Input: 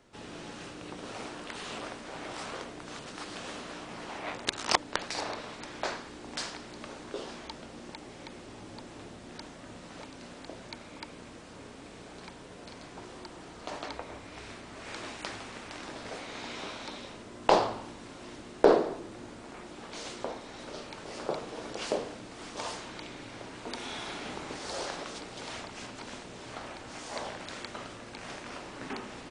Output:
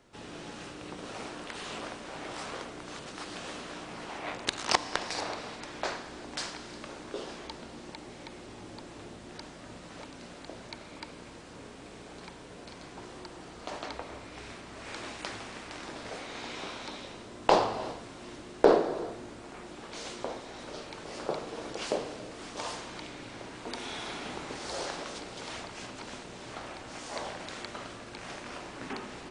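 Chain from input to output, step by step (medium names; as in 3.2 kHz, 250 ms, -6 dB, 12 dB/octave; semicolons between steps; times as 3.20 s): gated-style reverb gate 400 ms flat, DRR 11.5 dB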